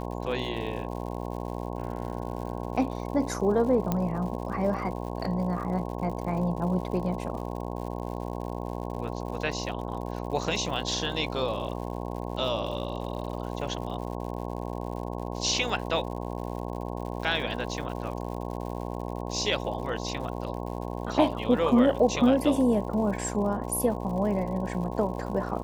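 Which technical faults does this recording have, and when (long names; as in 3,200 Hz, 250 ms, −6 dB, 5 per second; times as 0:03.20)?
mains buzz 60 Hz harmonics 18 −34 dBFS
surface crackle 130 per second −38 dBFS
0:03.92: click −13 dBFS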